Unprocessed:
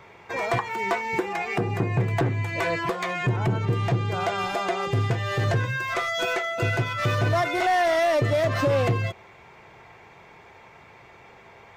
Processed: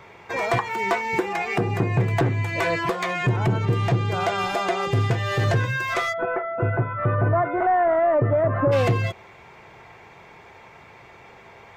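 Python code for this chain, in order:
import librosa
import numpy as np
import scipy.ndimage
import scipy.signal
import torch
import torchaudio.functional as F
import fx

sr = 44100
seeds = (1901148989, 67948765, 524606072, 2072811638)

y = fx.lowpass(x, sr, hz=1500.0, slope=24, at=(6.12, 8.71), fade=0.02)
y = y * librosa.db_to_amplitude(2.5)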